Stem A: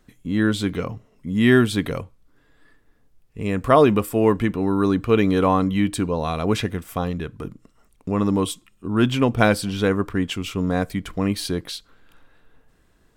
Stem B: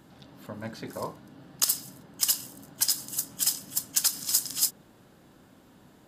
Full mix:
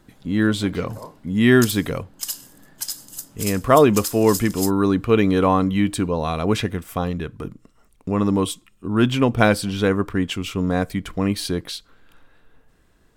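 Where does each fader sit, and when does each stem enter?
+1.0, -3.5 dB; 0.00, 0.00 s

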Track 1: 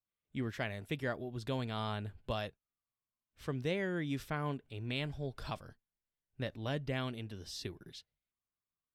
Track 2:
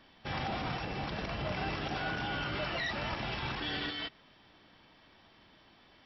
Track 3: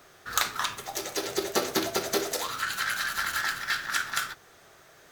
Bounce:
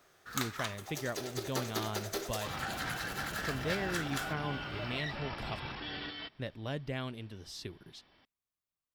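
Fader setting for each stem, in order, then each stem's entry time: -1.0, -5.0, -10.0 dB; 0.00, 2.20, 0.00 s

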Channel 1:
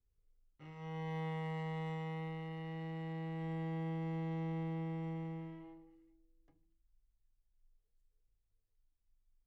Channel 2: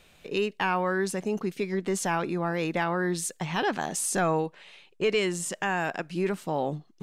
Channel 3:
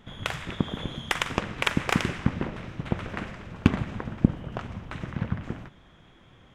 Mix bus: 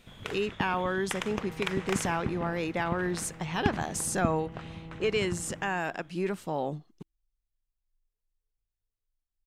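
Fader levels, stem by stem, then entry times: -6.5, -3.0, -8.5 dB; 0.30, 0.00, 0.00 s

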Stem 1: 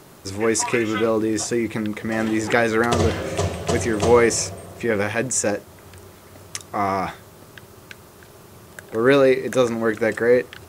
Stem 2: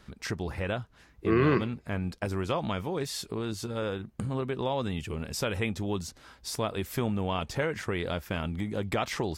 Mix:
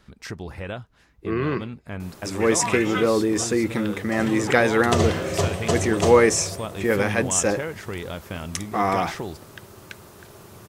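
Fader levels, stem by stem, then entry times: 0.0, -1.0 dB; 2.00, 0.00 s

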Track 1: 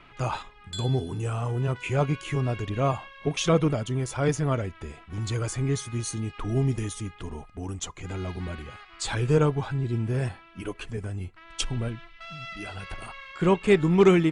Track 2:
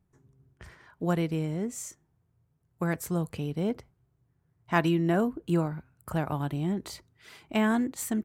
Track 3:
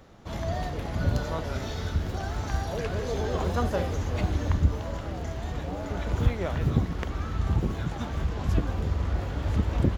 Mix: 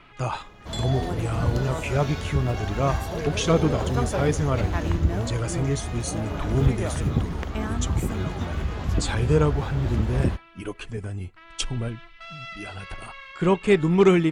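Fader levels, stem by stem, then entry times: +1.0, -7.5, +0.5 dB; 0.00, 0.00, 0.40 s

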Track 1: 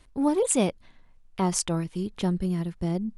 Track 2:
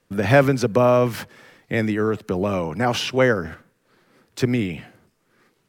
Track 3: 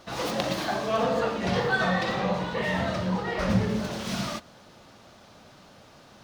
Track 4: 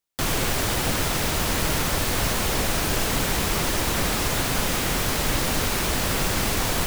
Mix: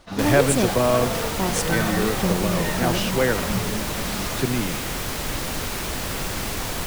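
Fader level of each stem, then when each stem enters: 0.0, -4.0, -2.5, -4.0 dB; 0.00, 0.00, 0.00, 0.00 s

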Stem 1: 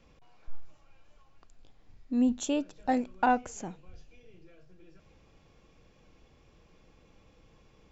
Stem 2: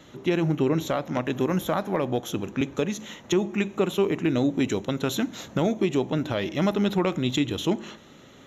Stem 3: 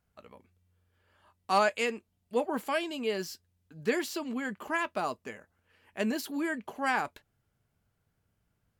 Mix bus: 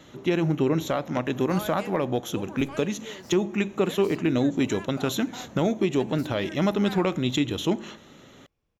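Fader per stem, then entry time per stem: -19.0, 0.0, -11.0 dB; 2.10, 0.00, 0.00 s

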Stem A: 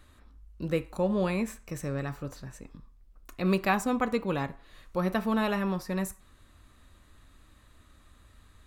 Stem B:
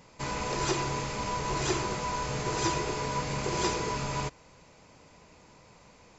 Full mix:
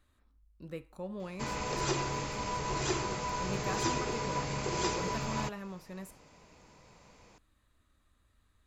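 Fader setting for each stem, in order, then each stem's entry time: -13.5, -3.0 dB; 0.00, 1.20 s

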